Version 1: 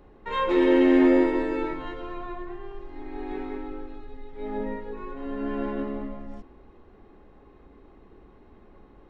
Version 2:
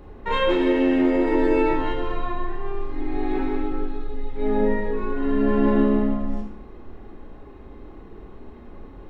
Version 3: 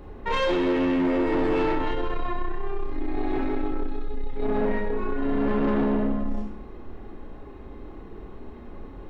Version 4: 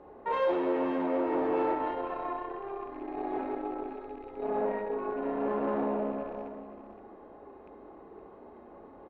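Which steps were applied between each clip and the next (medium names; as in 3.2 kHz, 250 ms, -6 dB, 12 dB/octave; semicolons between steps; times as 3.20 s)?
peak limiter -20.5 dBFS, peak gain reduction 11.5 dB; bass shelf 200 Hz +4.5 dB; Schroeder reverb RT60 0.48 s, combs from 26 ms, DRR 2.5 dB; trim +6 dB
saturation -20 dBFS, distortion -11 dB; trim +1 dB
rattle on loud lows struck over -33 dBFS, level -36 dBFS; band-pass filter 690 Hz, Q 1.3; delay 517 ms -11 dB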